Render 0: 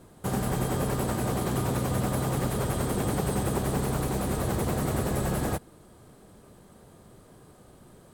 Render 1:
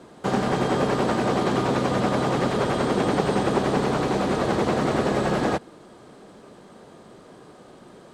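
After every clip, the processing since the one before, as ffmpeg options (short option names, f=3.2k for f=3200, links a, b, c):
-filter_complex "[0:a]acrossover=split=6800[a][b];[b]acompressor=threshold=-48dB:ratio=4:attack=1:release=60[c];[a][c]amix=inputs=2:normalize=0,acrossover=split=180 7000:gain=0.158 1 0.0708[d][e][f];[d][e][f]amix=inputs=3:normalize=0,volume=8.5dB"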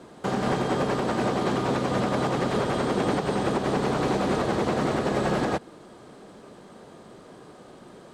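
-af "alimiter=limit=-15dB:level=0:latency=1:release=151"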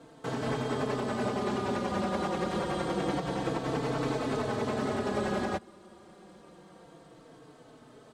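-filter_complex "[0:a]asplit=2[a][b];[b]adelay=4,afreqshift=-0.27[c];[a][c]amix=inputs=2:normalize=1,volume=-3dB"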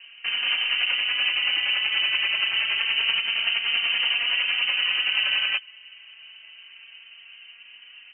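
-af "adynamicsmooth=sensitivity=8:basefreq=2.4k,lowpass=f=2.7k:t=q:w=0.5098,lowpass=f=2.7k:t=q:w=0.6013,lowpass=f=2.7k:t=q:w=0.9,lowpass=f=2.7k:t=q:w=2.563,afreqshift=-3200,volume=7dB"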